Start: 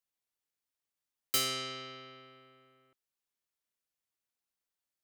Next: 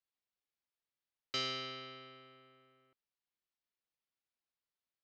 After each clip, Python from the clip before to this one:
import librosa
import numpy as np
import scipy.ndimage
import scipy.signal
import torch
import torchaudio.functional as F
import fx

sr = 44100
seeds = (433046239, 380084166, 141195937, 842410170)

y = scipy.signal.sosfilt(scipy.signal.cheby2(4, 40, 9200.0, 'lowpass', fs=sr, output='sos'), x)
y = y * librosa.db_to_amplitude(-3.5)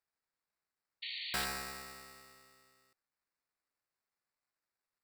y = fx.sample_hold(x, sr, seeds[0], rate_hz=3200.0, jitter_pct=0)
y = fx.spec_paint(y, sr, seeds[1], shape='noise', start_s=1.02, length_s=0.43, low_hz=1800.0, high_hz=4600.0, level_db=-47.0)
y = fx.tilt_shelf(y, sr, db=-6.5, hz=1200.0)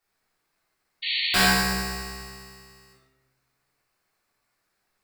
y = fx.room_shoebox(x, sr, seeds[2], volume_m3=390.0, walls='mixed', distance_m=3.4)
y = y * librosa.db_to_amplitude(8.0)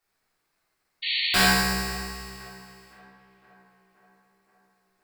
y = fx.echo_tape(x, sr, ms=521, feedback_pct=69, wet_db=-20.0, lp_hz=2300.0, drive_db=8.0, wow_cents=39)